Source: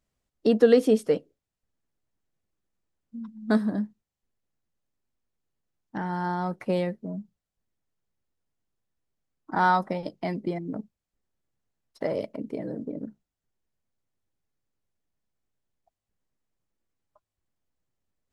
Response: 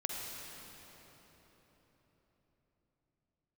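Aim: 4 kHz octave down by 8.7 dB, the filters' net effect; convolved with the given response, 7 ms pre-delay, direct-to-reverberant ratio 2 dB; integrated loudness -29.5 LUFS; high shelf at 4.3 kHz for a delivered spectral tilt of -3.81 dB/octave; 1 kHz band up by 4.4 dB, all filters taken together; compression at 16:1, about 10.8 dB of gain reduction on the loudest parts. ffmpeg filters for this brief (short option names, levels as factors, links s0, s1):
-filter_complex "[0:a]equalizer=f=1000:t=o:g=6,equalizer=f=4000:t=o:g=-7.5,highshelf=f=4300:g=-8.5,acompressor=threshold=0.0794:ratio=16,asplit=2[s0][s1];[1:a]atrim=start_sample=2205,adelay=7[s2];[s1][s2]afir=irnorm=-1:irlink=0,volume=0.596[s3];[s0][s3]amix=inputs=2:normalize=0,volume=1.19"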